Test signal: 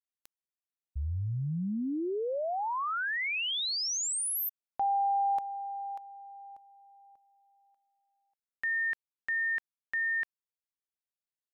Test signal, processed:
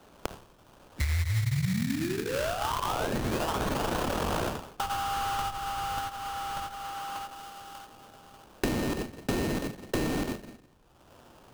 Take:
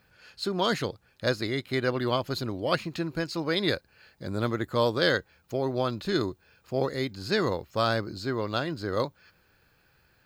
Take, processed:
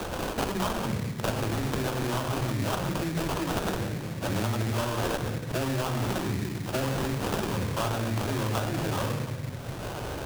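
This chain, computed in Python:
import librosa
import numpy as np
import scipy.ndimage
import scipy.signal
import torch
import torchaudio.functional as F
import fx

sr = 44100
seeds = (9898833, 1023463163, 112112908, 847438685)

p1 = fx.tone_stack(x, sr, knobs='5-5-5')
p2 = fx.dispersion(p1, sr, late='lows', ms=49.0, hz=300.0)
p3 = p2 + fx.echo_feedback(p2, sr, ms=87, feedback_pct=42, wet_db=-23.5, dry=0)
p4 = fx.room_shoebox(p3, sr, seeds[0], volume_m3=2400.0, walls='furnished', distance_m=2.7)
p5 = fx.over_compress(p4, sr, threshold_db=-46.0, ratio=-1.0)
p6 = p4 + F.gain(torch.from_numpy(p5), -1.5).numpy()
p7 = fx.low_shelf(p6, sr, hz=190.0, db=6.5)
p8 = fx.hum_notches(p7, sr, base_hz=50, count=9)
p9 = fx.sample_hold(p8, sr, seeds[1], rate_hz=2100.0, jitter_pct=20)
p10 = fx.band_squash(p9, sr, depth_pct=100)
y = F.gain(torch.from_numpy(p10), 7.0).numpy()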